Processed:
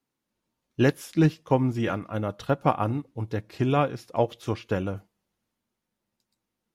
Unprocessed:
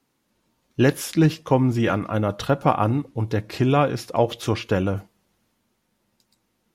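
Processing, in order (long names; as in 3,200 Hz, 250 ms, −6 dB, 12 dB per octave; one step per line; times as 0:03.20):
expander for the loud parts 1.5 to 1, over −33 dBFS
level −2.5 dB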